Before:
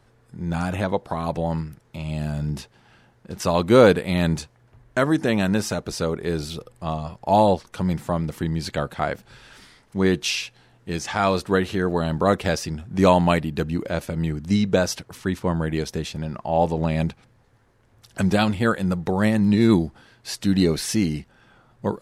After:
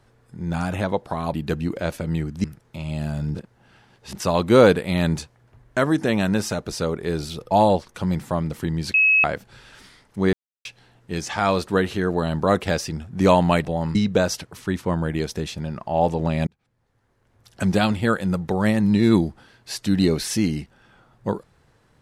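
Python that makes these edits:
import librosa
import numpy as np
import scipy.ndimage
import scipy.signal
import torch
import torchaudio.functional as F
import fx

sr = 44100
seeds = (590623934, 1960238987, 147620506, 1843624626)

y = fx.edit(x, sr, fx.swap(start_s=1.34, length_s=0.3, other_s=13.43, other_length_s=1.1),
    fx.reverse_span(start_s=2.55, length_s=0.8),
    fx.cut(start_s=6.71, length_s=0.58),
    fx.bleep(start_s=8.72, length_s=0.3, hz=2570.0, db=-13.0),
    fx.silence(start_s=10.11, length_s=0.32),
    fx.fade_in_span(start_s=17.05, length_s=1.22), tone=tone)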